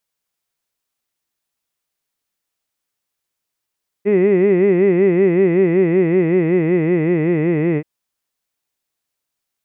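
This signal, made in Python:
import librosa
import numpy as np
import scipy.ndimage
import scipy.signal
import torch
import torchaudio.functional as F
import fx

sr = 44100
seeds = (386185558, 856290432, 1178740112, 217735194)

y = fx.vowel(sr, seeds[0], length_s=3.78, word='hid', hz=195.0, glide_st=-3.5, vibrato_hz=5.3, vibrato_st=1.45)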